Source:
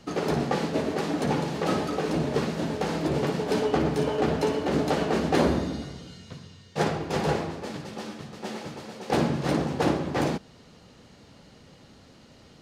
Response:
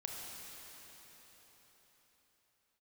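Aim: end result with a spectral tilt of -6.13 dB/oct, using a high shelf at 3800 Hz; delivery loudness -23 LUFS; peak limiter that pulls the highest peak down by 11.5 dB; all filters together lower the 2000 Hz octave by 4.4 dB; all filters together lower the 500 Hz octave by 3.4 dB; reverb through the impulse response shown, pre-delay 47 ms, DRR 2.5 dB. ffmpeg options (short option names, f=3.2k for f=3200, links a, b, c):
-filter_complex "[0:a]equalizer=f=500:t=o:g=-4,equalizer=f=2k:t=o:g=-3.5,highshelf=f=3.8k:g=-8,alimiter=limit=-23.5dB:level=0:latency=1,asplit=2[a][b];[1:a]atrim=start_sample=2205,adelay=47[c];[b][c]afir=irnorm=-1:irlink=0,volume=-2dB[d];[a][d]amix=inputs=2:normalize=0,volume=9dB"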